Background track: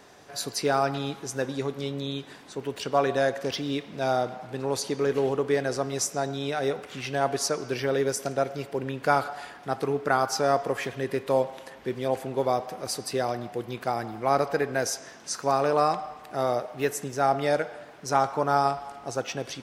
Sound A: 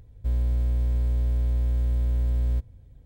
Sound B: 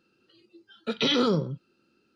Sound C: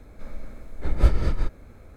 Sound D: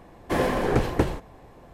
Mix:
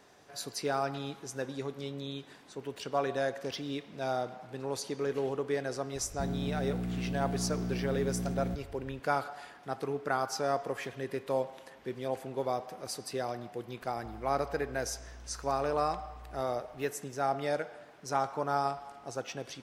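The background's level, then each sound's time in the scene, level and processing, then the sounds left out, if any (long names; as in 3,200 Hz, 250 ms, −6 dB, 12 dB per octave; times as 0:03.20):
background track −7.5 dB
0:05.95: mix in A −13.5 dB + sine wavefolder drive 9 dB, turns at −17.5 dBFS
0:13.81: mix in A −14 dB + downward compressor 5 to 1, threshold −34 dBFS
not used: B, C, D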